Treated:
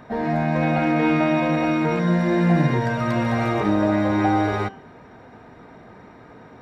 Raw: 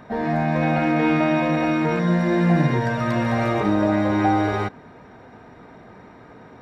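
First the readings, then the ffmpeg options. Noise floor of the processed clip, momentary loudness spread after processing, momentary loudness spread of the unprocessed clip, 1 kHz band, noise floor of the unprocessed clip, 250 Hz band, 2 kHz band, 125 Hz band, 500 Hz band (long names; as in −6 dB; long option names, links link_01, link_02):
−46 dBFS, 4 LU, 4 LU, −0.5 dB, −46 dBFS, 0.0 dB, −0.5 dB, 0.0 dB, 0.0 dB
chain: -af "bandreject=frequency=194.5:width_type=h:width=4,bandreject=frequency=389:width_type=h:width=4,bandreject=frequency=583.5:width_type=h:width=4,bandreject=frequency=778:width_type=h:width=4,bandreject=frequency=972.5:width_type=h:width=4,bandreject=frequency=1167:width_type=h:width=4,bandreject=frequency=1361.5:width_type=h:width=4,bandreject=frequency=1556:width_type=h:width=4,bandreject=frequency=1750.5:width_type=h:width=4,bandreject=frequency=1945:width_type=h:width=4,bandreject=frequency=2139.5:width_type=h:width=4,bandreject=frequency=2334:width_type=h:width=4,bandreject=frequency=2528.5:width_type=h:width=4,bandreject=frequency=2723:width_type=h:width=4,bandreject=frequency=2917.5:width_type=h:width=4,bandreject=frequency=3112:width_type=h:width=4,bandreject=frequency=3306.5:width_type=h:width=4,bandreject=frequency=3501:width_type=h:width=4,bandreject=frequency=3695.5:width_type=h:width=4,bandreject=frequency=3890:width_type=h:width=4,bandreject=frequency=4084.5:width_type=h:width=4,bandreject=frequency=4279:width_type=h:width=4,bandreject=frequency=4473.5:width_type=h:width=4,bandreject=frequency=4668:width_type=h:width=4,bandreject=frequency=4862.5:width_type=h:width=4,bandreject=frequency=5057:width_type=h:width=4,bandreject=frequency=5251.5:width_type=h:width=4,bandreject=frequency=5446:width_type=h:width=4,bandreject=frequency=5640.5:width_type=h:width=4,bandreject=frequency=5835:width_type=h:width=4,bandreject=frequency=6029.5:width_type=h:width=4,bandreject=frequency=6224:width_type=h:width=4,bandreject=frequency=6418.5:width_type=h:width=4,bandreject=frequency=6613:width_type=h:width=4,bandreject=frequency=6807.5:width_type=h:width=4,bandreject=frequency=7002:width_type=h:width=4,bandreject=frequency=7196.5:width_type=h:width=4,bandreject=frequency=7391:width_type=h:width=4,bandreject=frequency=7585.5:width_type=h:width=4"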